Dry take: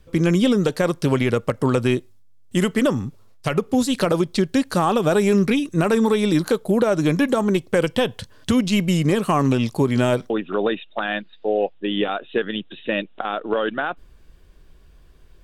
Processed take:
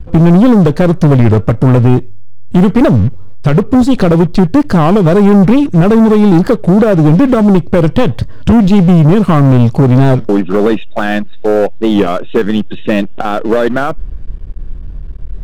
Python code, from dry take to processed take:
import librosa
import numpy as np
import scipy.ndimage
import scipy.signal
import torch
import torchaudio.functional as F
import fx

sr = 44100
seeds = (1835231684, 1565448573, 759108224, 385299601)

y = fx.riaa(x, sr, side='playback')
y = fx.leveller(y, sr, passes=3)
y = fx.record_warp(y, sr, rpm=33.33, depth_cents=160.0)
y = y * 10.0 ** (-1.5 / 20.0)